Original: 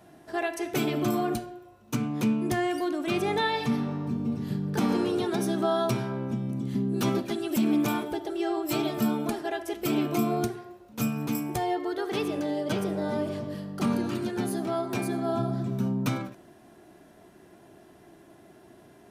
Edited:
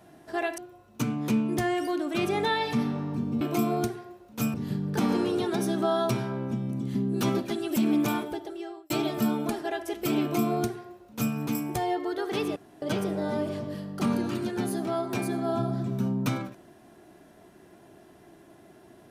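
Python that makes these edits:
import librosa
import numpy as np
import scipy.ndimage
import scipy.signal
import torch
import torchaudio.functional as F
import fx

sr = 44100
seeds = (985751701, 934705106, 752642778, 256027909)

y = fx.edit(x, sr, fx.cut(start_s=0.58, length_s=0.93),
    fx.fade_out_span(start_s=7.97, length_s=0.73),
    fx.duplicate(start_s=10.01, length_s=1.13, to_s=4.34),
    fx.room_tone_fill(start_s=12.36, length_s=0.26), tone=tone)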